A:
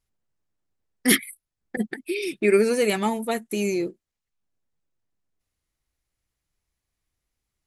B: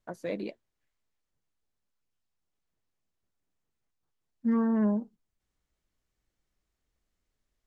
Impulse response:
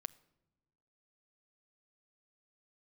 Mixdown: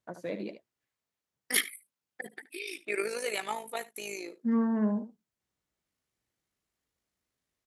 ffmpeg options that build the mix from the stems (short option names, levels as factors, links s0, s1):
-filter_complex "[0:a]highpass=640,tremolo=f=53:d=0.621,adelay=450,volume=0.631,asplit=2[s0][s1];[s1]volume=0.112[s2];[1:a]highpass=98,volume=0.794,asplit=2[s3][s4];[s4]volume=0.299[s5];[s2][s5]amix=inputs=2:normalize=0,aecho=0:1:74:1[s6];[s0][s3][s6]amix=inputs=3:normalize=0"